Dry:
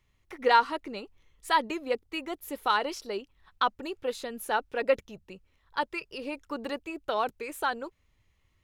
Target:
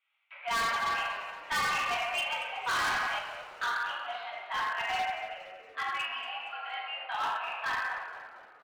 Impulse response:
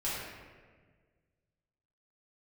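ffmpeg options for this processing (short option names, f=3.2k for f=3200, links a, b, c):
-filter_complex "[0:a]highpass=f=560:t=q:w=0.5412,highpass=f=560:t=q:w=1.307,lowpass=f=2.9k:t=q:w=0.5176,lowpass=f=2.9k:t=q:w=0.7071,lowpass=f=2.9k:t=q:w=1.932,afreqshift=210,crystalizer=i=5:c=0[a];[1:a]atrim=start_sample=2205[b];[a][b]afir=irnorm=-1:irlink=0,asettb=1/sr,asplit=3[c][d][e];[c]atrim=end=0.864[f];[d]atrim=start=0.86:end=3.19,asetpts=PTS-STARTPTS,afade=t=in:d=0.004:c=qsin,afade=t=out:st=2.326:d=0.004:c=qsin,acontrast=28[g];[e]atrim=start=3.186[h];[f][g]acrossfade=d=0.004:c1=hsin:c2=qsin[i];[i][h]acrossfade=d=0.004:c1=qsin:c2=hsin,asoftclip=type=hard:threshold=-19.5dB,asplit=6[j][k][l][m][n][o];[k]adelay=233,afreqshift=-100,volume=-14dB[p];[l]adelay=466,afreqshift=-200,volume=-20dB[q];[m]adelay=699,afreqshift=-300,volume=-26dB[r];[n]adelay=932,afreqshift=-400,volume=-32.1dB[s];[o]adelay=1165,afreqshift=-500,volume=-38.1dB[t];[j][p][q][r][s][t]amix=inputs=6:normalize=0,volume=-8dB"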